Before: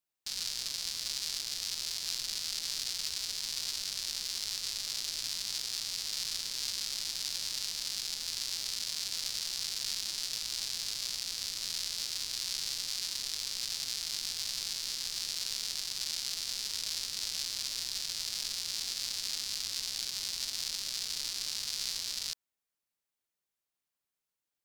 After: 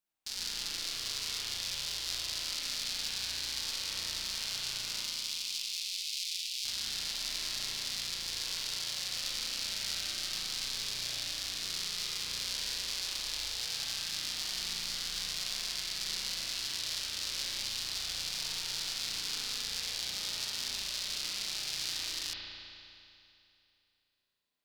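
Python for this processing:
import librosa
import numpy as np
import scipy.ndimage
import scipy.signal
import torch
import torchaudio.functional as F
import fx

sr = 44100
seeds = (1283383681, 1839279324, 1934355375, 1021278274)

y = fx.steep_highpass(x, sr, hz=2300.0, slope=48, at=(5.01, 6.65))
y = fx.rev_spring(y, sr, rt60_s=2.7, pass_ms=(35,), chirp_ms=30, drr_db=-5.5)
y = y * 10.0 ** (-2.0 / 20.0)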